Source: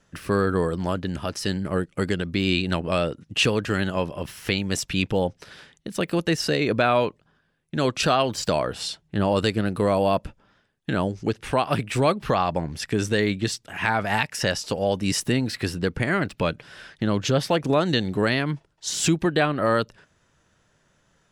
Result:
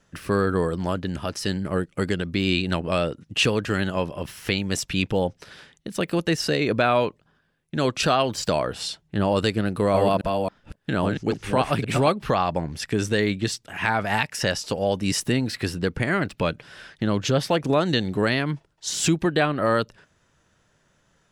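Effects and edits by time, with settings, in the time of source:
0:09.67–0:12.09: delay that plays each chunk backwards 272 ms, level −3.5 dB

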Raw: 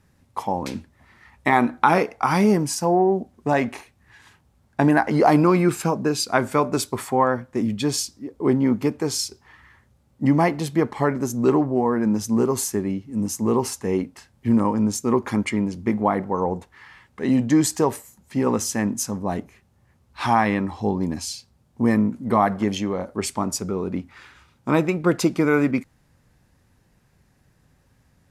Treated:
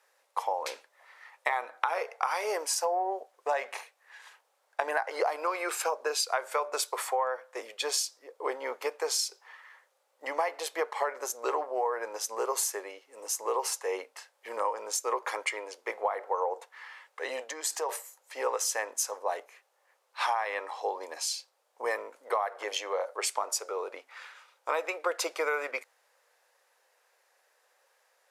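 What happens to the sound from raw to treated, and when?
0:17.43–0:17.89: downward compressor 3 to 1, threshold −25 dBFS
whole clip: elliptic high-pass filter 490 Hz, stop band 60 dB; downward compressor 12 to 1, threshold −25 dBFS

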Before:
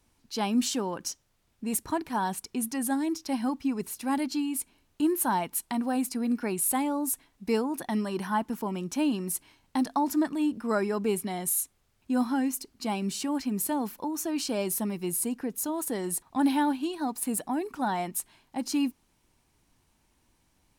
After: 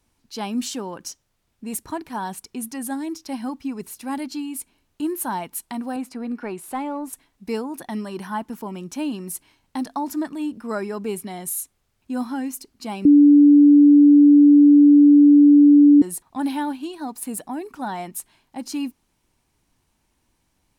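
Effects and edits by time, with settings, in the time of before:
0:05.96–0:07.13: mid-hump overdrive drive 12 dB, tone 1,100 Hz, clips at −15.5 dBFS
0:13.05–0:16.02: beep over 290 Hz −7.5 dBFS

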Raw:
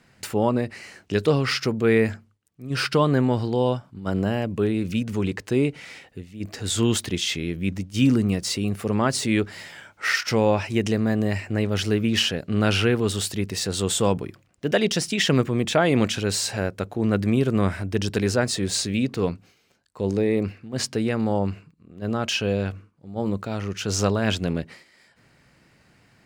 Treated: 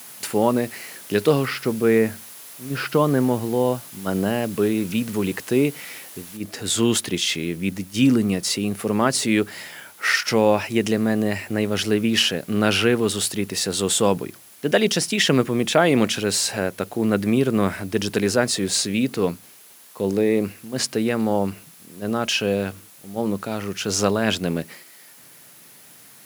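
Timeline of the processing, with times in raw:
0:01.45–0:03.89: head-to-tape spacing loss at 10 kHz 23 dB
0:06.37: noise floor change −46 dB −53 dB
whole clip: high-pass filter 160 Hz 12 dB per octave; parametric band 11,000 Hz +8.5 dB 0.31 octaves; level +3 dB

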